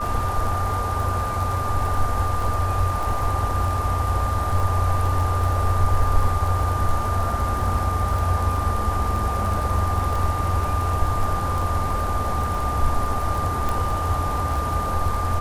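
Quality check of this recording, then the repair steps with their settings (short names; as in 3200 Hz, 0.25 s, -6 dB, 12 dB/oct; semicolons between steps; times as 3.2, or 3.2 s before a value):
crackle 21/s -25 dBFS
tone 1200 Hz -26 dBFS
13.69 pop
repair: de-click; notch 1200 Hz, Q 30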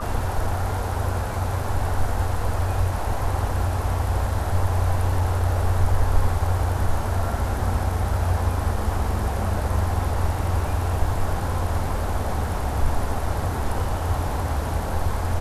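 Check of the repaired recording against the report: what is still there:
none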